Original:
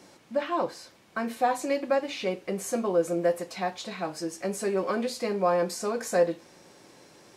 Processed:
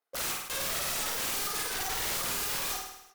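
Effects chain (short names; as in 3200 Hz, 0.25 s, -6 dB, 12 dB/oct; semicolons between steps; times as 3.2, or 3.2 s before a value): rattling part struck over -38 dBFS, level -19 dBFS; gate -48 dBFS, range -35 dB; on a send at -3 dB: reverb RT60 0.40 s, pre-delay 40 ms; on the sum: tube stage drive 17 dB, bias 0.65; HPF 76 Hz 6 dB/oct; wrapped overs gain 31.5 dB; high shelf 10000 Hz +8.5 dB; feedback echo 0.121 s, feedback 54%, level -3 dB; speed mistake 33 rpm record played at 78 rpm; sustainer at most 70 dB/s; gain +2 dB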